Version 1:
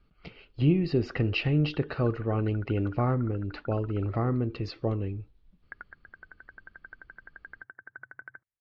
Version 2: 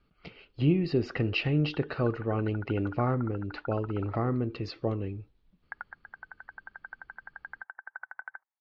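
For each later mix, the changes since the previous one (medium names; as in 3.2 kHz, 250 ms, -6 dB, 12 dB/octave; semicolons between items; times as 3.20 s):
speech: add bass shelf 87 Hz -8 dB; background: add resonant high-pass 840 Hz, resonance Q 5.3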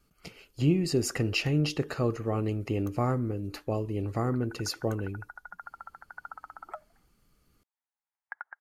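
background: entry +2.60 s; master: remove steep low-pass 4.1 kHz 36 dB/octave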